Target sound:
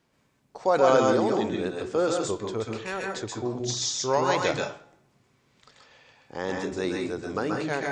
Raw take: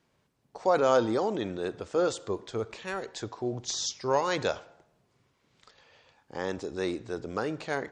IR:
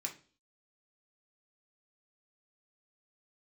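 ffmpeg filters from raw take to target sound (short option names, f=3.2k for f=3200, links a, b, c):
-filter_complex "[0:a]asplit=2[a][b];[b]lowshelf=f=81:g=10.5[c];[1:a]atrim=start_sample=2205,adelay=129[d];[c][d]afir=irnorm=-1:irlink=0,volume=0.5dB[e];[a][e]amix=inputs=2:normalize=0,volume=1.5dB"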